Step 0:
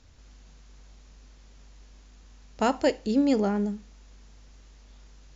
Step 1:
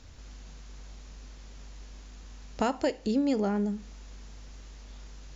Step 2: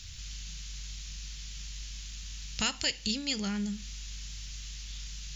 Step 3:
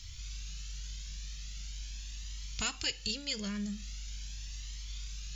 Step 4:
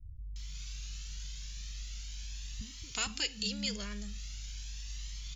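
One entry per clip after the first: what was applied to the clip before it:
compression 2.5:1, threshold -34 dBFS, peak gain reduction 11.5 dB; trim +5.5 dB
FFT filter 170 Hz 0 dB, 260 Hz -16 dB, 700 Hz -19 dB, 3 kHz +10 dB; trim +3.5 dB
Shepard-style flanger rising 0.42 Hz; trim +1 dB
bands offset in time lows, highs 360 ms, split 240 Hz

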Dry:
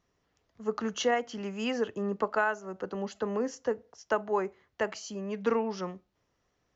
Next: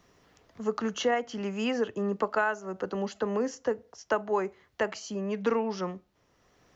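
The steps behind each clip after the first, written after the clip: three bands compressed up and down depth 40%; trim +1.5 dB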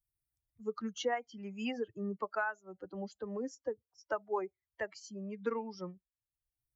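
expander on every frequency bin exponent 2; trim -4.5 dB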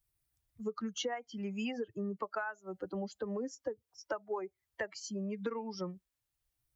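compression 6:1, threshold -42 dBFS, peak gain reduction 13.5 dB; trim +7.5 dB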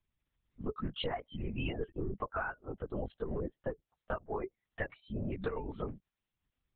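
LPC vocoder at 8 kHz whisper; trim +1 dB

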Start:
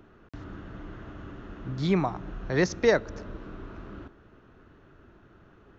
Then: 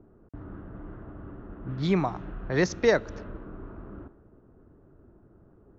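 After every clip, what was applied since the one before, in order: level-controlled noise filter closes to 600 Hz, open at -23.5 dBFS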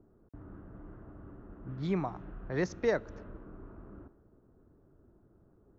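peaking EQ 4.4 kHz -6 dB 1.9 oct; trim -7 dB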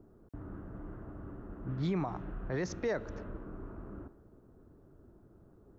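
peak limiter -29 dBFS, peak gain reduction 11.5 dB; trim +4 dB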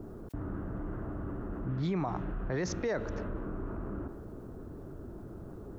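level flattener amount 50%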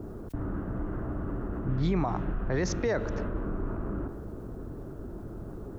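octave divider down 2 oct, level -4 dB; trim +4 dB

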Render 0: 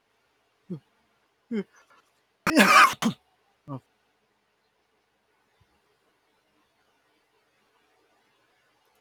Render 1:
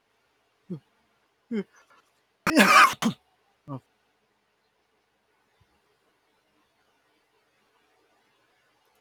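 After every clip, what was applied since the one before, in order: no audible change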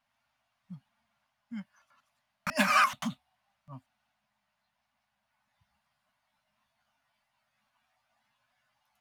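Chebyshev band-stop 260–580 Hz, order 4; trim -8 dB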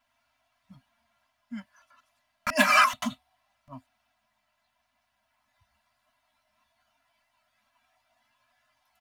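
comb 3 ms, depth 90%; trim +2.5 dB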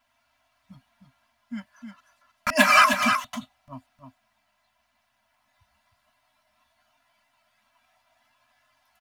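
delay 310 ms -7 dB; trim +3.5 dB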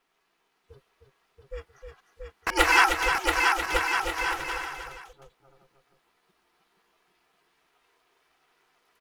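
ring modulator 270 Hz; bouncing-ball echo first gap 680 ms, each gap 0.7×, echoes 5

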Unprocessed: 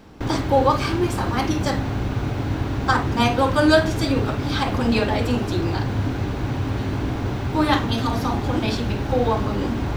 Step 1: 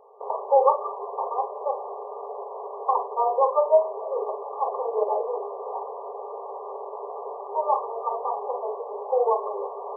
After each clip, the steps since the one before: FFT band-pass 390–1200 Hz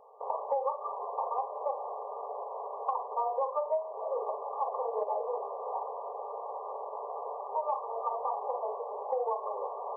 peaking EQ 390 Hz -14.5 dB 0.23 oct; compression 6:1, threshold -26 dBFS, peak gain reduction 12.5 dB; trim -2 dB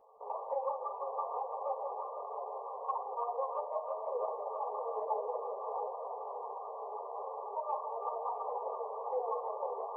echo whose repeats swap between lows and highs 166 ms, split 840 Hz, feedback 85%, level -4.5 dB; three-phase chorus; trim -2.5 dB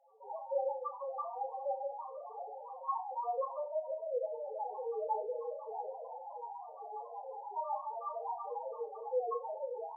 loudest bins only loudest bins 2; flutter echo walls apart 5.5 m, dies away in 0.26 s; trim +3.5 dB

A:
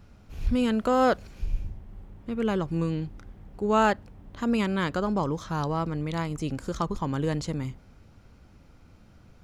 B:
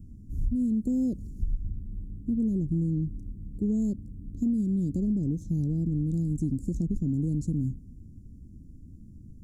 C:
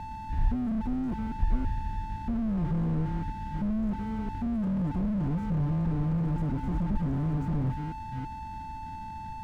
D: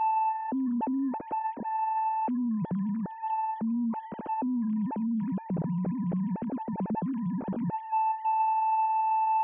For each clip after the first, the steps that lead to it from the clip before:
elliptic band-stop 280–7700 Hz, stop band 60 dB; treble shelf 4.6 kHz -11 dB; compression 10:1, threshold -31 dBFS, peak gain reduction 12 dB; trim +7.5 dB
chunks repeated in reverse 330 ms, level -10 dB; whistle 880 Hz -37 dBFS; slew-rate limiter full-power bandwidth 6.7 Hz; trim +2.5 dB
formants replaced by sine waves

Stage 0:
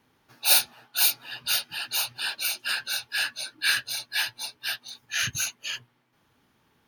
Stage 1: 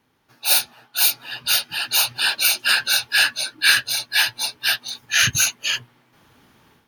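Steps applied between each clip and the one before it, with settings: level rider gain up to 12 dB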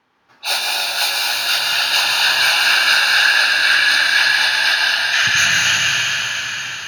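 FFT filter 120 Hz 0 dB, 1.1 kHz +13 dB, 5.5 kHz +6 dB, 12 kHz -6 dB; peak limiter -1.5 dBFS, peak gain reduction 9 dB; reverberation RT60 5.3 s, pre-delay 100 ms, DRR -5 dB; trim -6 dB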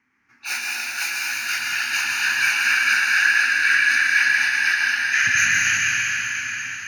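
FFT filter 110 Hz 0 dB, 150 Hz -5 dB, 250 Hz +4 dB, 570 Hz -19 dB, 2.2 kHz +8 dB, 3.5 kHz -16 dB, 6.2 kHz +2 dB, 9.7 kHz -4 dB; trim -4.5 dB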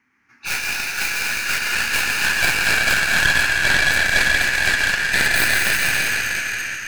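tracing distortion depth 0.16 ms; in parallel at -1.5 dB: gain riding within 3 dB; on the sum: trim -4 dB

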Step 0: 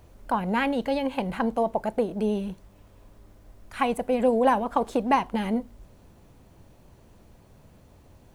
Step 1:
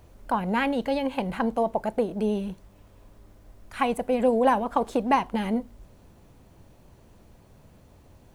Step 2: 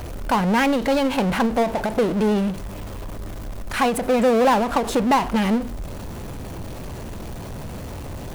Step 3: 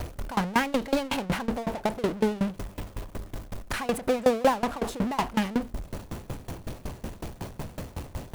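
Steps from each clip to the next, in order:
no audible change
power-law waveshaper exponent 0.5; endings held to a fixed fall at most 140 dB/s
in parallel at -10 dB: wavefolder -26 dBFS; on the sum: sawtooth tremolo in dB decaying 5.4 Hz, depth 23 dB

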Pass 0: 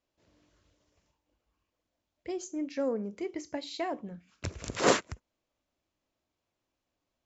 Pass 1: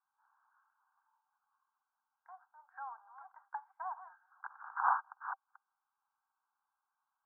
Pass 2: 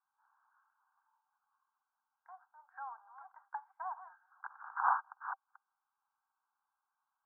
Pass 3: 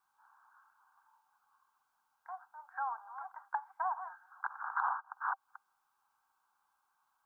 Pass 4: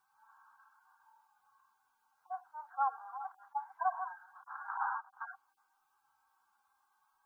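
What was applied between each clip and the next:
chunks repeated in reverse 232 ms, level -14 dB; low-pass that closes with the level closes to 1 kHz, closed at -30 dBFS; Chebyshev band-pass 780–1600 Hz, order 5; trim +6 dB
no audible change
compression 16:1, threshold -39 dBFS, peak gain reduction 15.5 dB; trim +9 dB
harmonic-percussive separation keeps harmonic; trim +5.5 dB

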